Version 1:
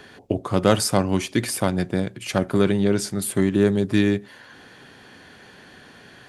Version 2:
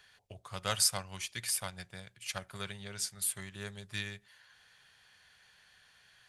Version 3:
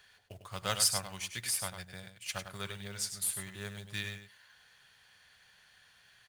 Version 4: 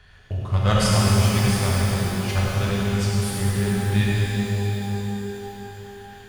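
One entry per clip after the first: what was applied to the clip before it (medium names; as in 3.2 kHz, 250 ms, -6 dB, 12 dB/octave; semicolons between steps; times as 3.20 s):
amplifier tone stack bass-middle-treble 10-0-10; upward expansion 1.5:1, over -40 dBFS; trim -1.5 dB
short-mantissa float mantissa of 2-bit; delay 100 ms -8.5 dB
RIAA curve playback; pitch-shifted reverb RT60 3.7 s, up +12 st, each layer -8 dB, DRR -5 dB; trim +8 dB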